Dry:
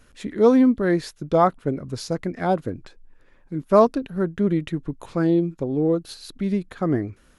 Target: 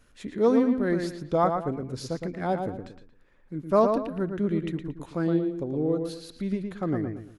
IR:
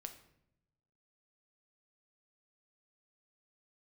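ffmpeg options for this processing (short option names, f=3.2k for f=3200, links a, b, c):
-filter_complex "[0:a]asplit=2[a][b];[b]adelay=114,lowpass=f=3.3k:p=1,volume=-5.5dB,asplit=2[c][d];[d]adelay=114,lowpass=f=3.3k:p=1,volume=0.34,asplit=2[e][f];[f]adelay=114,lowpass=f=3.3k:p=1,volume=0.34,asplit=2[g][h];[h]adelay=114,lowpass=f=3.3k:p=1,volume=0.34[i];[a][c][e][g][i]amix=inputs=5:normalize=0,volume=-6dB"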